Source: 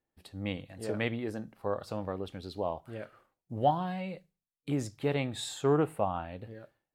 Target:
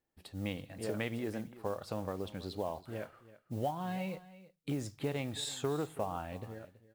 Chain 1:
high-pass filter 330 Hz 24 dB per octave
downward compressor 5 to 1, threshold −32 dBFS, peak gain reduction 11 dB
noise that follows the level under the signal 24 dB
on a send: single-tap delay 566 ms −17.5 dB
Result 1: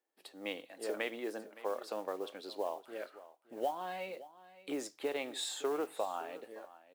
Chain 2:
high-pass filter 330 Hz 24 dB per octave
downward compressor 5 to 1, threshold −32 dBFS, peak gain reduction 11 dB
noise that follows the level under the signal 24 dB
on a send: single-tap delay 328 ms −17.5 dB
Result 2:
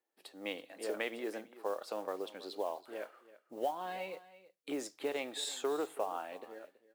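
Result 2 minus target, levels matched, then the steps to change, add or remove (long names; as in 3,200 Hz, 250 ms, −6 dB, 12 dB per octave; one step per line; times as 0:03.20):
250 Hz band −5.0 dB
remove: high-pass filter 330 Hz 24 dB per octave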